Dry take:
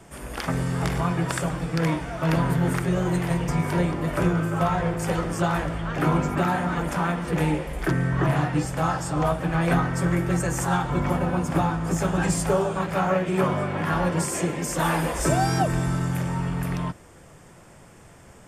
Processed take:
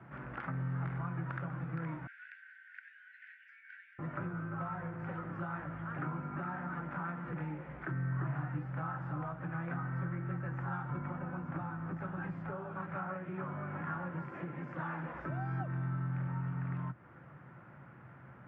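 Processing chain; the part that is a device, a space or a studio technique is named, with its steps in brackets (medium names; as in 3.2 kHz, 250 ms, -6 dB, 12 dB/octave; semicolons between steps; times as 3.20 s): bass amplifier (compression 4:1, threshold -34 dBFS, peak gain reduction 14.5 dB; cabinet simulation 78–2100 Hz, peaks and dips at 89 Hz -7 dB, 130 Hz +8 dB, 440 Hz -8 dB, 660 Hz -4 dB, 1.4 kHz +7 dB); 2.07–3.99 s: Chebyshev high-pass 1.5 kHz, order 8; trim -5.5 dB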